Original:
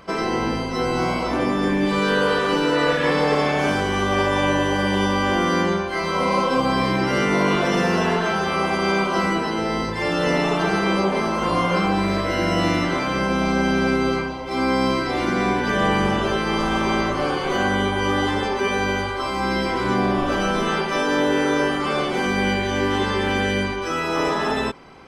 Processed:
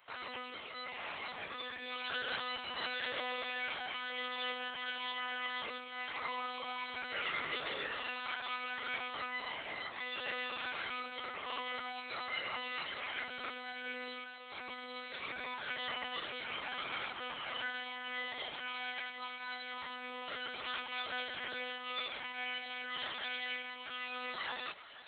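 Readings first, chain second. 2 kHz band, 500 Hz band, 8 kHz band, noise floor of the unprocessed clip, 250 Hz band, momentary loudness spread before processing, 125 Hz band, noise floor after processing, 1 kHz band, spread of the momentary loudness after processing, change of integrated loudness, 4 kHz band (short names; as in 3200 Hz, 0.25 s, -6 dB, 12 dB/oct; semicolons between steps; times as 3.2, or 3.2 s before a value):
-14.5 dB, -26.5 dB, under -40 dB, -26 dBFS, -34.0 dB, 4 LU, -38.5 dB, -47 dBFS, -19.5 dB, 5 LU, -18.5 dB, -11.5 dB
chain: notches 50/100/150/200/250/300/350/400 Hz; split-band echo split 470 Hz, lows 99 ms, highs 0.485 s, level -14 dB; chorus voices 2, 0.26 Hz, delay 23 ms, depth 2.4 ms; monotone LPC vocoder at 8 kHz 250 Hz; differentiator; gain +2 dB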